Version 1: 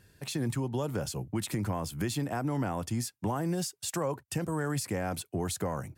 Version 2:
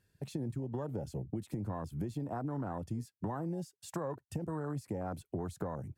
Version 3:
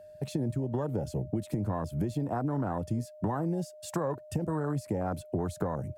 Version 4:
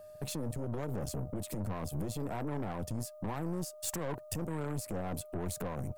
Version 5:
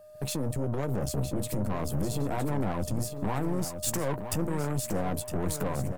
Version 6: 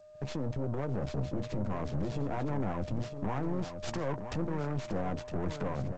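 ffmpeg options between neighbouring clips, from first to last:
-af "afwtdn=0.0158,acompressor=threshold=0.0126:ratio=4,volume=1.33"
-af "aeval=exprs='val(0)+0.002*sin(2*PI*610*n/s)':c=same,volume=2.11"
-af "alimiter=level_in=1.58:limit=0.0631:level=0:latency=1:release=15,volume=0.631,aeval=exprs='(tanh(63.1*val(0)+0.75)-tanh(0.75))/63.1':c=same,crystalizer=i=1.5:c=0,volume=1.5"
-filter_complex "[0:a]dynaudnorm=f=120:g=3:m=2.51,asplit=2[s0][s1];[s1]adelay=15,volume=0.224[s2];[s0][s2]amix=inputs=2:normalize=0,aecho=1:1:962|1924|2886:0.355|0.0923|0.024,volume=0.794"
-filter_complex "[0:a]acrossover=split=840|3400[s0][s1][s2];[s2]aeval=exprs='abs(val(0))':c=same[s3];[s0][s1][s3]amix=inputs=3:normalize=0,volume=0.668" -ar 16000 -c:a g722

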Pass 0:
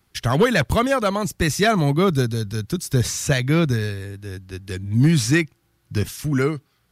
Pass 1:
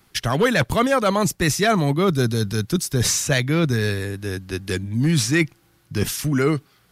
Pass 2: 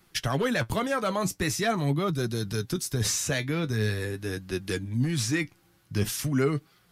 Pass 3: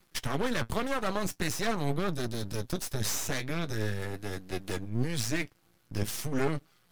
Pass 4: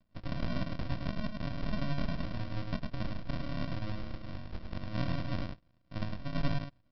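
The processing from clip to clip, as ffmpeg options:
-af "areverse,acompressor=threshold=0.0708:ratio=6,areverse,equalizer=f=71:w=1.2:g=-8,volume=2.51"
-af "acompressor=threshold=0.1:ratio=3,flanger=delay=5.4:depth=6.1:regen=53:speed=0.44:shape=triangular"
-af "aeval=exprs='max(val(0),0)':c=same"
-af "flanger=delay=5.1:depth=2.3:regen=-71:speed=1:shape=triangular,aresample=11025,acrusher=samples=26:mix=1:aa=0.000001,aresample=44100,aecho=1:1:105:0.596"

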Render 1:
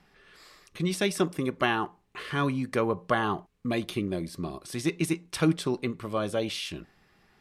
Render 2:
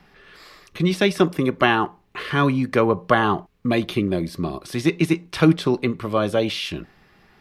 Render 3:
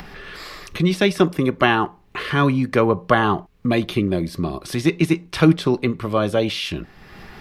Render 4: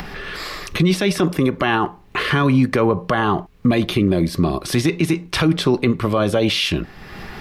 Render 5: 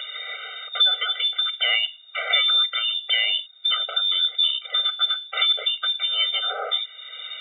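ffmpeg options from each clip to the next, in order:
-filter_complex "[0:a]equalizer=f=8400:t=o:w=0.97:g=-7.5,acrossover=split=320|4800[s0][s1][s2];[s2]alimiter=level_in=6.31:limit=0.0631:level=0:latency=1:release=20,volume=0.158[s3];[s0][s1][s3]amix=inputs=3:normalize=0,volume=2.66"
-filter_complex "[0:a]lowshelf=f=82:g=6,asplit=2[s0][s1];[s1]acompressor=mode=upward:threshold=0.0891:ratio=2.5,volume=1.33[s2];[s0][s2]amix=inputs=2:normalize=0,volume=0.473"
-af "alimiter=level_in=4.47:limit=0.891:release=50:level=0:latency=1,volume=0.473"
-af "lowpass=f=3100:t=q:w=0.5098,lowpass=f=3100:t=q:w=0.6013,lowpass=f=3100:t=q:w=0.9,lowpass=f=3100:t=q:w=2.563,afreqshift=-3700,afftfilt=real='re*eq(mod(floor(b*sr/1024/390),2),1)':imag='im*eq(mod(floor(b*sr/1024/390),2),1)':win_size=1024:overlap=0.75"

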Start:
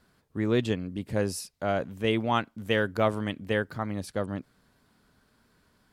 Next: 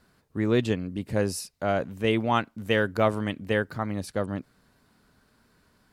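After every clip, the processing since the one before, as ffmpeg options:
-af "bandreject=f=3300:w=21,volume=1.26"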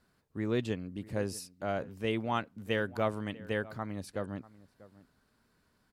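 -filter_complex "[0:a]asplit=2[s0][s1];[s1]adelay=641.4,volume=0.112,highshelf=f=4000:g=-14.4[s2];[s0][s2]amix=inputs=2:normalize=0,volume=0.398"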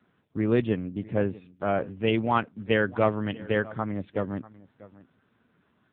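-af "volume=2.66" -ar 8000 -c:a libopencore_amrnb -b:a 5900

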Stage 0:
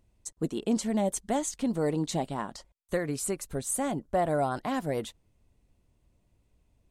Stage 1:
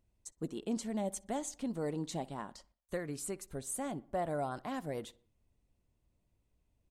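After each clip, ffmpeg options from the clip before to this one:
-filter_complex "[0:a]asplit=2[s0][s1];[s1]adelay=61,lowpass=f=2900:p=1,volume=0.0841,asplit=2[s2][s3];[s3]adelay=61,lowpass=f=2900:p=1,volume=0.51,asplit=2[s4][s5];[s5]adelay=61,lowpass=f=2900:p=1,volume=0.51,asplit=2[s6][s7];[s7]adelay=61,lowpass=f=2900:p=1,volume=0.51[s8];[s0][s2][s4][s6][s8]amix=inputs=5:normalize=0,volume=0.376"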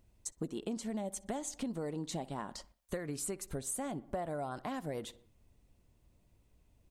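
-af "acompressor=threshold=0.00631:ratio=6,volume=2.66"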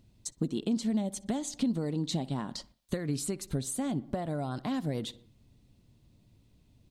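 -af "equalizer=f=125:t=o:w=1:g=10,equalizer=f=250:t=o:w=1:g=8,equalizer=f=4000:t=o:w=1:g=10"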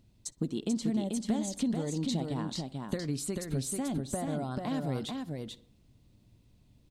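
-af "aecho=1:1:438:0.631,volume=0.841"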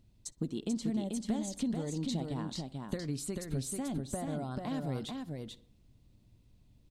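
-af "lowshelf=f=60:g=7.5,volume=0.668"

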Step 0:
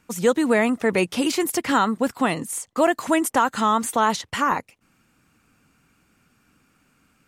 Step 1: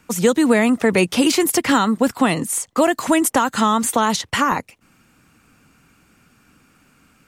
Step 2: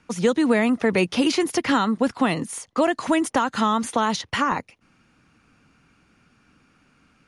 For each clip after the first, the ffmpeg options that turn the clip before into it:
-filter_complex "[0:a]acrossover=split=270|3000[s0][s1][s2];[s1]acompressor=threshold=0.0708:ratio=3[s3];[s0][s3][s2]amix=inputs=3:normalize=0,volume=2.24"
-af "equalizer=f=8000:w=3.4:g=-14,aresample=22050,aresample=44100,volume=0.631"

